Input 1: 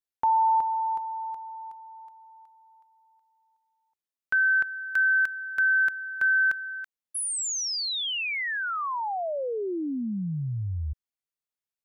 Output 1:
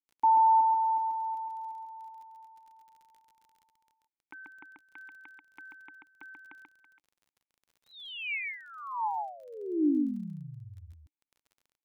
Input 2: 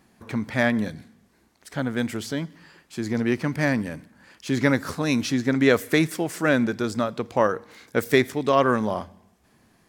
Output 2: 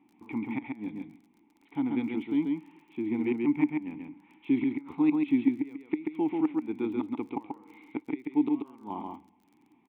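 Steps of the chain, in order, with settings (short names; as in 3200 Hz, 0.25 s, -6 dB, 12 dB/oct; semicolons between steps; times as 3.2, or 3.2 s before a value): flipped gate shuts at -11 dBFS, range -25 dB; vowel filter u; downsampling 8000 Hz; crackle 16/s -56 dBFS; on a send: echo 0.136 s -3.5 dB; on the sum: gain +6.5 dB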